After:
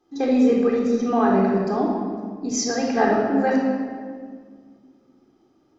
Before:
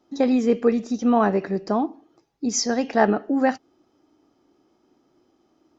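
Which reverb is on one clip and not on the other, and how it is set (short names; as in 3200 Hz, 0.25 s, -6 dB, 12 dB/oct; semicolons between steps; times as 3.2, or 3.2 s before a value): shoebox room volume 2700 m³, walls mixed, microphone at 3.8 m; gain -5 dB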